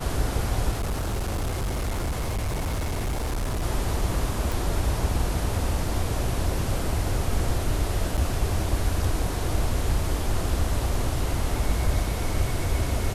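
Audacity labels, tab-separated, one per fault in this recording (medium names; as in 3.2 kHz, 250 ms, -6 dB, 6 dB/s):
0.710000	3.640000	clipped -23.5 dBFS
4.520000	4.520000	pop
8.170000	8.180000	dropout 7.7 ms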